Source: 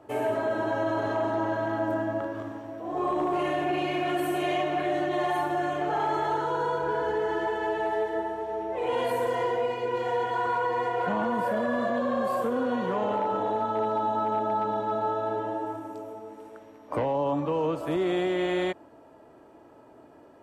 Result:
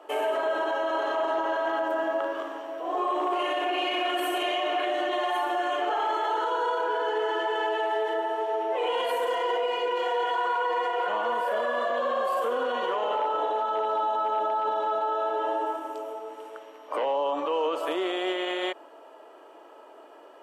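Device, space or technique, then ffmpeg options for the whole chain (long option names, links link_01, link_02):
laptop speaker: -af "highpass=frequency=390:width=0.5412,highpass=frequency=390:width=1.3066,equalizer=frequency=1200:width_type=o:width=0.5:gain=4,equalizer=frequency=3000:width_type=o:width=0.3:gain=9.5,alimiter=limit=-24dB:level=0:latency=1:release=48,volume=4.5dB"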